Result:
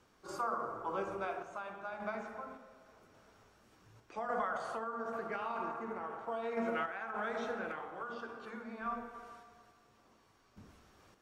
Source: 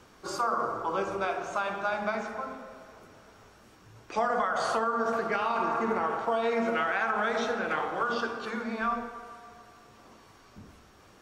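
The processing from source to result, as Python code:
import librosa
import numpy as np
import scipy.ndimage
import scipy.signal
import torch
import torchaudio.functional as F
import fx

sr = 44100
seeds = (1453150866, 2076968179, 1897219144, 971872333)

y = fx.dynamic_eq(x, sr, hz=4900.0, q=0.83, threshold_db=-52.0, ratio=4.0, max_db=-7)
y = fx.tremolo_random(y, sr, seeds[0], hz=3.5, depth_pct=55)
y = F.gain(torch.from_numpy(y), -6.5).numpy()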